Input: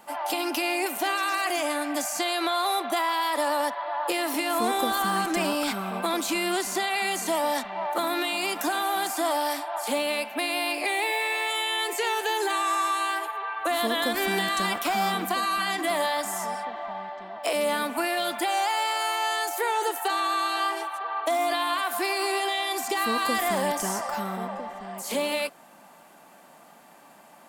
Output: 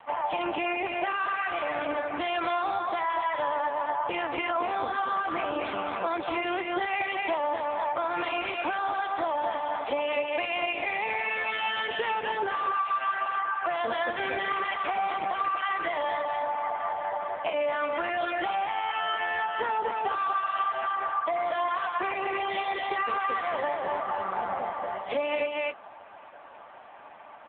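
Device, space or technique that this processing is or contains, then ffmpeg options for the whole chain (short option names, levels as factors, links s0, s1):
voicemail: -filter_complex "[0:a]asplit=3[s0][s1][s2];[s0]afade=t=out:st=10.91:d=0.02[s3];[s1]bandreject=f=4900:w=16,afade=t=in:st=10.91:d=0.02,afade=t=out:st=11.58:d=0.02[s4];[s2]afade=t=in:st=11.58:d=0.02[s5];[s3][s4][s5]amix=inputs=3:normalize=0,asettb=1/sr,asplit=3[s6][s7][s8];[s6]atrim=end=20.274[s9];[s7]atrim=start=20.27:end=21.01,asetpts=PTS-STARTPTS,afade=t=in:d=0.004:c=qsin,afade=t=out:st=0.736:d=0.004:c=qsin,lowpass=9500[s10];[s8]atrim=start=21.006[s11];[s9][s10]acrossfade=d=0.004:c1=hsin:c2=qsin[s12];[s12][s11]acrossfade=d=0.004:c1=qsin:c2=hsin,highpass=410,lowpass=2900,aecho=1:1:238:0.631,acompressor=threshold=0.0251:ratio=6,volume=2.37" -ar 8000 -c:a libopencore_amrnb -b:a 5900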